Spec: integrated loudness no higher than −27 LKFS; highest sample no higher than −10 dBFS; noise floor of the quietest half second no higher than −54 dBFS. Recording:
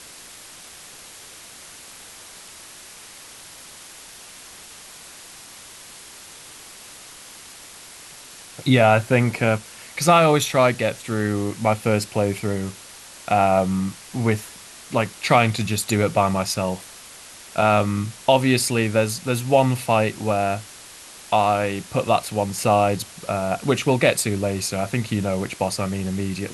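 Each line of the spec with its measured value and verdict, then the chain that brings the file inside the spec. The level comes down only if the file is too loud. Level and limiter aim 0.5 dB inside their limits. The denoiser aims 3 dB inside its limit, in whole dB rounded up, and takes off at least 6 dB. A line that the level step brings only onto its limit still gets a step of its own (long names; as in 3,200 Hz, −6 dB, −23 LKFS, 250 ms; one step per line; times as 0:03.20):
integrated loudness −21.0 LKFS: out of spec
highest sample −3.5 dBFS: out of spec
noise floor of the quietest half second −42 dBFS: out of spec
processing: broadband denoise 9 dB, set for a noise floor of −42 dBFS
level −6.5 dB
brickwall limiter −10.5 dBFS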